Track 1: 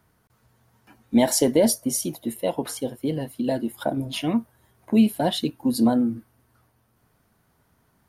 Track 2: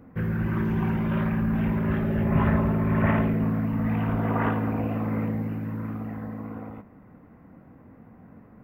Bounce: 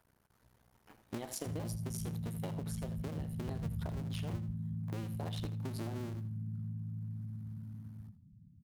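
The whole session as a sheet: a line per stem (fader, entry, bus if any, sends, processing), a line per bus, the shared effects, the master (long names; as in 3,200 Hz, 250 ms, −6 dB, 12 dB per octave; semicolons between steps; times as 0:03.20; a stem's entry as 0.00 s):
−4.5 dB, 0.00 s, no send, echo send −13 dB, sub-harmonics by changed cycles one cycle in 2, muted; downward compressor 4 to 1, threshold −28 dBFS, peak gain reduction 12.5 dB
+0.5 dB, 1.30 s, no send, no echo send, gate on every frequency bin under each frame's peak −10 dB strong; inverse Chebyshev band-stop filter 490–1,500 Hz, stop band 70 dB; parametric band 67 Hz −4 dB 2.6 octaves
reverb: not used
echo: repeating echo 81 ms, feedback 24%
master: downward compressor 2.5 to 1, threshold −40 dBFS, peak gain reduction 12 dB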